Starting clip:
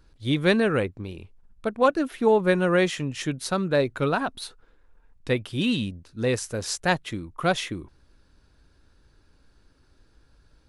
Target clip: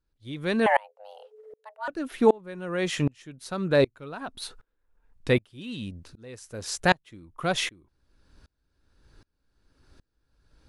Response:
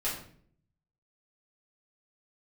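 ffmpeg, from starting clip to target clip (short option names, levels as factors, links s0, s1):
-filter_complex "[0:a]asplit=2[s0][s1];[s1]alimiter=limit=0.126:level=0:latency=1:release=65,volume=1.06[s2];[s0][s2]amix=inputs=2:normalize=0,asettb=1/sr,asplit=3[s3][s4][s5];[s3]atrim=end=0.664[s6];[s4]atrim=start=0.66:end=1.88,asetpts=PTS-STARTPTS,afade=t=in:d=0.004:c=qsin,afade=t=out:st=1.216:d=0.004:c=qsin,afreqshift=420[s7];[s5]atrim=start=1.876[s8];[s6][s7]acrossfade=d=0.004:c1=hsin:c2=qsin[s9];[s9][s8]acrossfade=d=0.004:c1=qsin:c2=hsin,aeval=exprs='val(0)*pow(10,-30*if(lt(mod(-1.3*n/s,1),2*abs(-1.3)/1000),1-mod(-1.3*n/s,1)/(2*abs(-1.3)/1000),(mod(-1.3*n/s,1)-2*abs(-1.3)/1000)/(1-2*abs(-1.3)/1000))/20)':c=same"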